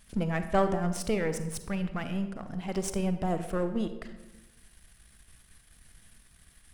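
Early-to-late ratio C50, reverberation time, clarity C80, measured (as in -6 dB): 10.0 dB, 1.1 s, 12.0 dB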